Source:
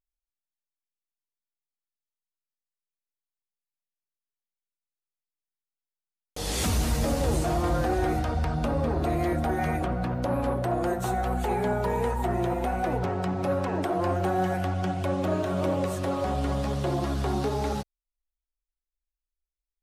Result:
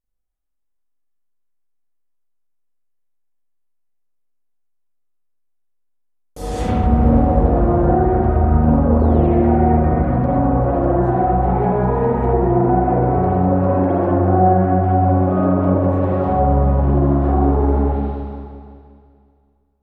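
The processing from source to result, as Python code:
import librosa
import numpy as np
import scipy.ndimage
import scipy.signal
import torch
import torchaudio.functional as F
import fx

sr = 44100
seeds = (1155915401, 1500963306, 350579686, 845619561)

y = fx.spec_paint(x, sr, seeds[0], shape='fall', start_s=8.99, length_s=0.34, low_hz=2000.0, high_hz=4600.0, level_db=-39.0)
y = fx.peak_eq(y, sr, hz=3200.0, db=-13.5, octaves=2.4)
y = fx.rev_spring(y, sr, rt60_s=2.2, pass_ms=(39, 43, 47), chirp_ms=75, drr_db=-8.5)
y = fx.env_lowpass_down(y, sr, base_hz=1600.0, full_db=-14.5)
y = y * 10.0 ** (3.5 / 20.0)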